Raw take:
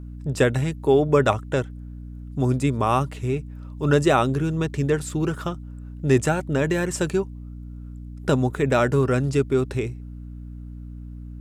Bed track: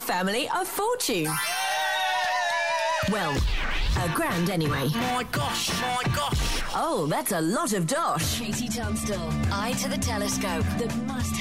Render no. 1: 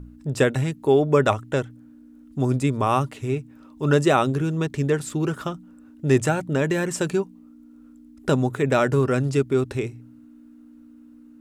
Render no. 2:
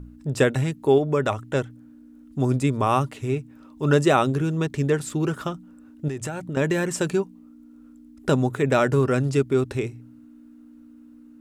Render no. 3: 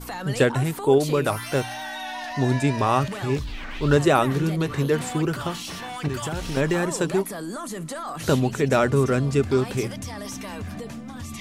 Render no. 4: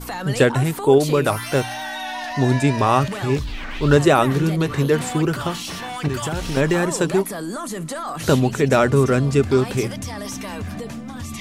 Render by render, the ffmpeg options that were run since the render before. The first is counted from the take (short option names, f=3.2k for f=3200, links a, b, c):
-af "bandreject=f=60:t=h:w=4,bandreject=f=120:t=h:w=4,bandreject=f=180:t=h:w=4"
-filter_complex "[0:a]asettb=1/sr,asplit=3[a][b][c];[a]atrim=end=0.984[d];[b]atrim=start=0.98:end=1.55,asetpts=PTS-STARTPTS,afade=t=in:d=0.004:c=qsin,afade=t=out:st=0.566:d=0.004:c=qsin,acompressor=threshold=-25dB:ratio=1.5:attack=3.2:release=140:knee=1:detection=peak[e];[c]atrim=start=1.546[f];[d][e]acrossfade=d=0.004:c1=hsin:c2=qsin[g];[g][f]acrossfade=d=0.004:c1=qsin:c2=hsin,asettb=1/sr,asplit=3[h][i][j];[h]atrim=end=6.084[k];[i]atrim=start=6.08:end=6.57,asetpts=PTS-STARTPTS,afade=t=in:d=0.004:c=qsin,afade=t=out:st=0.486:d=0.004:c=qsin,acompressor=threshold=-26dB:ratio=12:attack=3.2:release=140:knee=1:detection=peak[l];[j]atrim=start=6.566[m];[k][l]acrossfade=d=0.004:c1=hsin:c2=qsin[n];[n][m]acrossfade=d=0.004:c1=qsin:c2=hsin"
-filter_complex "[1:a]volume=-7.5dB[a];[0:a][a]amix=inputs=2:normalize=0"
-af "volume=4dB,alimiter=limit=-3dB:level=0:latency=1"